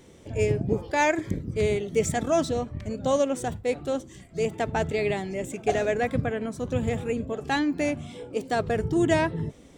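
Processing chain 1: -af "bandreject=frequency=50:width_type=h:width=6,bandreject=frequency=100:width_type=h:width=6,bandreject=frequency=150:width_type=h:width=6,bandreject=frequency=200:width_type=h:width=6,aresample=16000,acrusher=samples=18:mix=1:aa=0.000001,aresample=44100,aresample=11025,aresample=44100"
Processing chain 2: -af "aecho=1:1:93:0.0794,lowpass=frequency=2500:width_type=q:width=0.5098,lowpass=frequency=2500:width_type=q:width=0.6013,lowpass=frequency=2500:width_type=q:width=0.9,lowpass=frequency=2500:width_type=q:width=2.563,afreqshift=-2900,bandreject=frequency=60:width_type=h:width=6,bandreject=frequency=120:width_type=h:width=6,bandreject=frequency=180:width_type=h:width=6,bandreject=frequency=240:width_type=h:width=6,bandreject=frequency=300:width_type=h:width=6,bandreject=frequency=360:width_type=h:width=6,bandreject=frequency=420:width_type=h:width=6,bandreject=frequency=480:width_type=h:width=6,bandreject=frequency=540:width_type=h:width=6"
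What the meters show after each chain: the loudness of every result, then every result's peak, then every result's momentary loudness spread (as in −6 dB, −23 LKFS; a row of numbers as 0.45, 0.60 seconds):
−27.5, −24.0 LKFS; −10.5, −9.0 dBFS; 7, 7 LU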